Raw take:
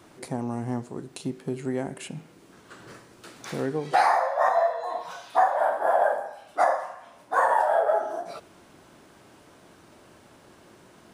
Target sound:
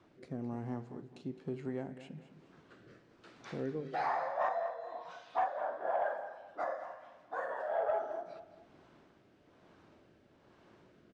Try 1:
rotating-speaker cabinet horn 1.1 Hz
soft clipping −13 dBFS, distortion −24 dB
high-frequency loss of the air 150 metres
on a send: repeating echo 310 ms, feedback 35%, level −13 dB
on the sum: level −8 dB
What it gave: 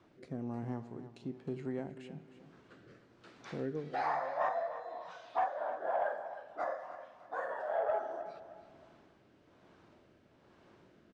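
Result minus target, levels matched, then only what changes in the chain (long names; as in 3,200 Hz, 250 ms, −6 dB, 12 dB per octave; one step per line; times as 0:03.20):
echo 97 ms late
change: repeating echo 213 ms, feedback 35%, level −13 dB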